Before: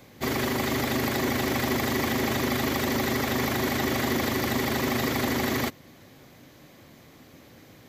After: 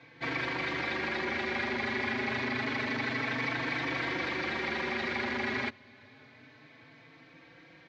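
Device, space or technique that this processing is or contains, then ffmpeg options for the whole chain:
barber-pole flanger into a guitar amplifier: -filter_complex "[0:a]asplit=2[a][b];[b]adelay=4,afreqshift=0.28[c];[a][c]amix=inputs=2:normalize=1,asoftclip=type=tanh:threshold=-26.5dB,highpass=100,equalizer=f=190:t=q:w=4:g=-4,equalizer=f=940:t=q:w=4:g=4,equalizer=f=1.6k:t=q:w=4:g=9,equalizer=f=2.3k:t=q:w=4:g=10,equalizer=f=4.1k:t=q:w=4:g=3,lowpass=f=4.6k:w=0.5412,lowpass=f=4.6k:w=1.3066,volume=-3dB"

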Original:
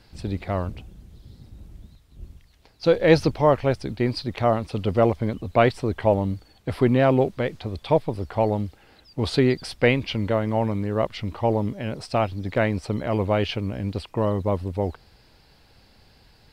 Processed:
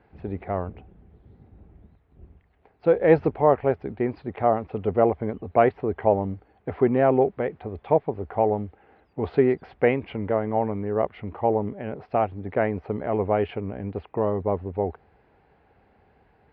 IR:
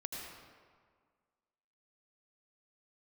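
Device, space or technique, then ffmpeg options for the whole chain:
bass cabinet: -af "highpass=61,equalizer=f=120:t=q:w=4:g=-5,equalizer=f=420:t=q:w=4:g=7,equalizer=f=760:t=q:w=4:g=7,lowpass=f=2.2k:w=0.5412,lowpass=f=2.2k:w=1.3066,volume=-3.5dB"

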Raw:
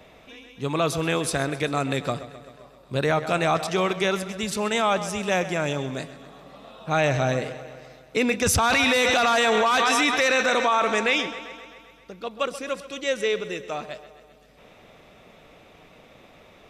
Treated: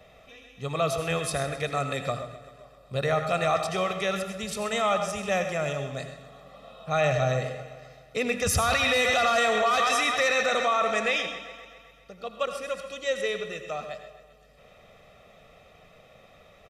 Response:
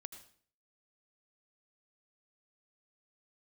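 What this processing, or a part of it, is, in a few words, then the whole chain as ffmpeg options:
microphone above a desk: -filter_complex "[0:a]aecho=1:1:1.6:0.64[a];[1:a]atrim=start_sample=2205[b];[a][b]afir=irnorm=-1:irlink=0"

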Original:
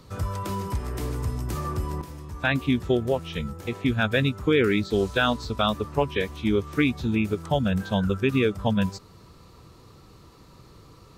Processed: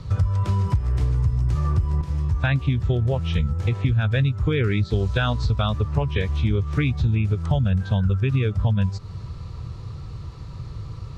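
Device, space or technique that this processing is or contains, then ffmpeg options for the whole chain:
jukebox: -af "lowpass=6.1k,lowshelf=f=170:t=q:w=1.5:g=12,acompressor=threshold=-24dB:ratio=5,volume=5.5dB"

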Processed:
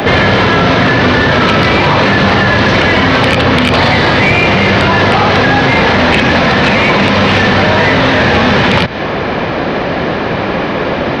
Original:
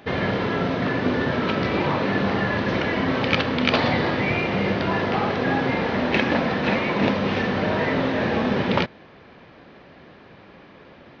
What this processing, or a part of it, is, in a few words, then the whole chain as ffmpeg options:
mastering chain: -filter_complex "[0:a]equalizer=f=680:t=o:w=1.4:g=3,acrossover=split=130|1000|3000[a][b][c][d];[a]acompressor=threshold=-34dB:ratio=4[e];[b]acompressor=threshold=-33dB:ratio=4[f];[c]acompressor=threshold=-32dB:ratio=4[g];[d]acompressor=threshold=-36dB:ratio=4[h];[e][f][g][h]amix=inputs=4:normalize=0,acompressor=threshold=-29dB:ratio=3,asoftclip=type=tanh:threshold=-23.5dB,alimiter=level_in=32.5dB:limit=-1dB:release=50:level=0:latency=1,volume=-1dB"

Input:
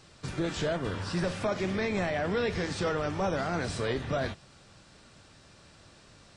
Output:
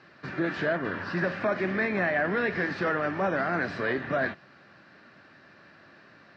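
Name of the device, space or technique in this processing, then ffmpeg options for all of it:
kitchen radio: -af "highpass=220,equalizer=f=470:t=q:w=4:g=-6,equalizer=f=870:t=q:w=4:g=-4,equalizer=f=1.7k:t=q:w=4:g=9,equalizer=f=3.4k:t=q:w=4:g=-8,lowpass=f=4.4k:w=0.5412,lowpass=f=4.4k:w=1.3066,highshelf=f=3.3k:g=-9.5,volume=5dB"

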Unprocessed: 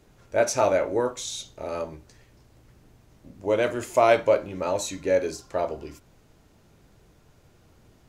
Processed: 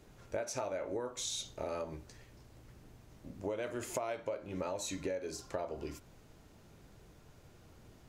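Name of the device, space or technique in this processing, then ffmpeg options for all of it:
serial compression, leveller first: -af "acompressor=threshold=-29dB:ratio=1.5,acompressor=threshold=-33dB:ratio=8,volume=-1.5dB"

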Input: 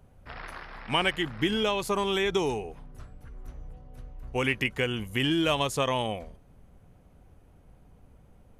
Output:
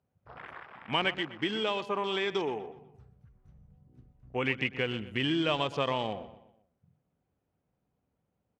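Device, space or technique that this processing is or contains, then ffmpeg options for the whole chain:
over-cleaned archive recording: -filter_complex "[0:a]highpass=110,lowpass=6.5k,afwtdn=0.00891,asettb=1/sr,asplit=3[a][b][c];[a]atrim=end=1.184[d];[b]atrim=start=1.18:end=2.75,asetpts=PTS-STARTPTS,afade=t=in:d=0.004:c=qsin,afade=t=out:st=1.566:d=0.004:c=qsin,highpass=f=260:p=1[e];[c]atrim=start=2.746[f];[d][e]acrossfade=d=0.004:c1=hsin:c2=qsin[g];[g][f]acrossfade=d=0.004:c1=qsin:c2=hsin,asplit=2[h][i];[i]adelay=123,lowpass=f=3.7k:p=1,volume=-14.5dB,asplit=2[j][k];[k]adelay=123,lowpass=f=3.7k:p=1,volume=0.44,asplit=2[l][m];[m]adelay=123,lowpass=f=3.7k:p=1,volume=0.44,asplit=2[n][o];[o]adelay=123,lowpass=f=3.7k:p=1,volume=0.44[p];[h][j][l][n][p]amix=inputs=5:normalize=0,volume=-3dB"

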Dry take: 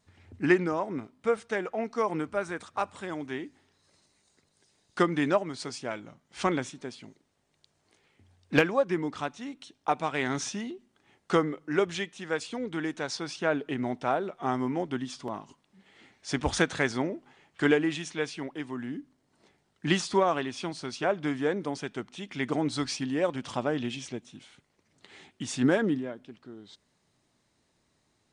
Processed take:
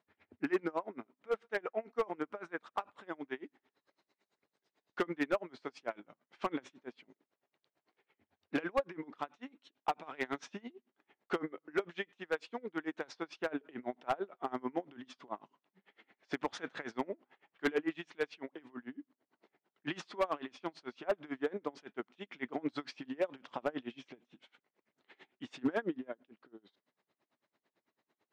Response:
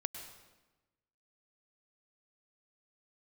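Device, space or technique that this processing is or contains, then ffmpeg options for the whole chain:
helicopter radio: -af "highpass=300,lowpass=2.7k,aeval=exprs='val(0)*pow(10,-28*(0.5-0.5*cos(2*PI*9*n/s))/20)':c=same,asoftclip=type=hard:threshold=-24dB"

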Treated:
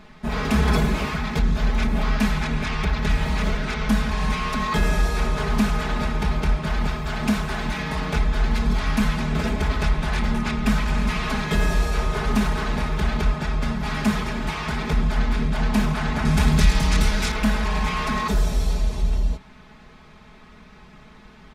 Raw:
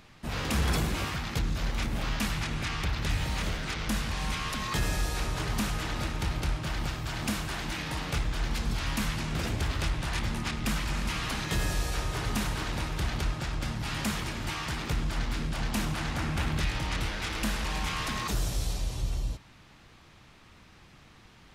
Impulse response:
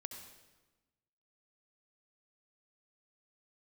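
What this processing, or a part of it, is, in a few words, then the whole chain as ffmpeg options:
through cloth: -filter_complex "[0:a]highshelf=f=3.5k:g=-12,aecho=1:1:4.7:0.97,asettb=1/sr,asplit=3[a][b][c];[a]atrim=end=16.254[d];[b]atrim=start=16.25:end=17.32,asetpts=PTS-STARTPTS,afade=t=in:d=0.004:c=qsin,afade=t=out:st=1.066:d=0.004:c=qsin,bass=f=250:g=5,treble=f=4k:g=13[e];[c]atrim=start=17.316[f];[d][e]acrossfade=d=0.004:c1=hsin:c2=qsin[g];[g][f]acrossfade=d=0.004:c1=qsin:c2=hsin,bandreject=f=2.9k:w=15,volume=6.5dB"

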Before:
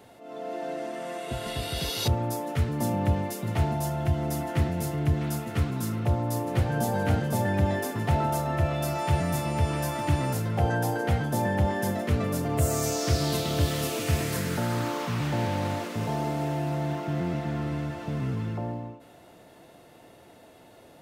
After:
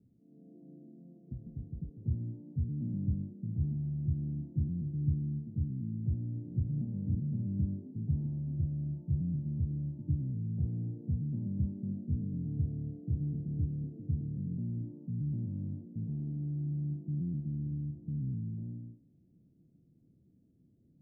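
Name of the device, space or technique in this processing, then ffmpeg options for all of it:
the neighbour's flat through the wall: -af "lowpass=f=260:w=0.5412,lowpass=f=260:w=1.3066,equalizer=f=160:t=o:w=0.73:g=5.5,volume=-8.5dB"

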